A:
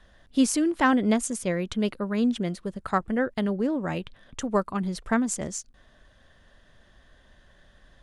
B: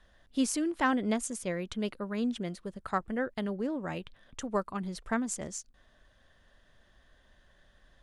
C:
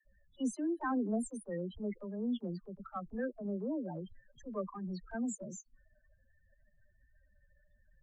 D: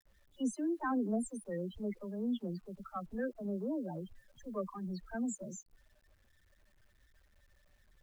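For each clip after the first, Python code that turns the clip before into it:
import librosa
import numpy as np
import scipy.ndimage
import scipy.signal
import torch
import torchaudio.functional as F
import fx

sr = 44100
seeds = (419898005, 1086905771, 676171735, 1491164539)

y1 = fx.peak_eq(x, sr, hz=150.0, db=-2.5, octaves=2.7)
y1 = y1 * 10.0 ** (-5.5 / 20.0)
y2 = fx.spec_topn(y1, sr, count=8)
y2 = fx.transient(y2, sr, attack_db=-7, sustain_db=1)
y2 = fx.dispersion(y2, sr, late='lows', ms=53.0, hz=350.0)
y2 = y2 * 10.0 ** (-2.5 / 20.0)
y3 = fx.quant_dither(y2, sr, seeds[0], bits=12, dither='none')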